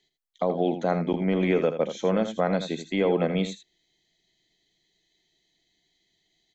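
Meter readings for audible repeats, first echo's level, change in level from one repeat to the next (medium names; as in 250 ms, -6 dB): 1, -10.0 dB, no regular repeats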